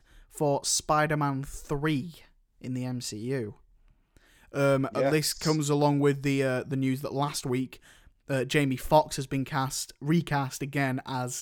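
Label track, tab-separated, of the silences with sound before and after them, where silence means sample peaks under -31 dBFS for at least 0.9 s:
3.490000	4.550000	silence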